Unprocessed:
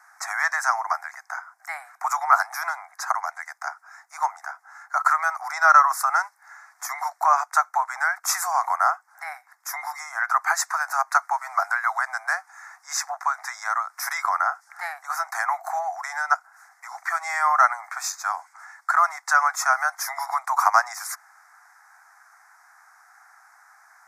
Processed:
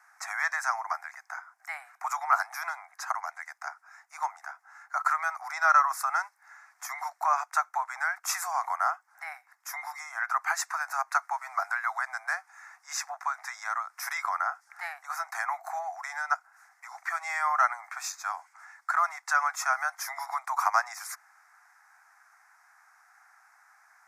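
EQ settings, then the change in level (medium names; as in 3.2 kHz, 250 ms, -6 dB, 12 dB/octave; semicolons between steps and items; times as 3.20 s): peaking EQ 2.8 kHz +11.5 dB 0.57 oct; -7.5 dB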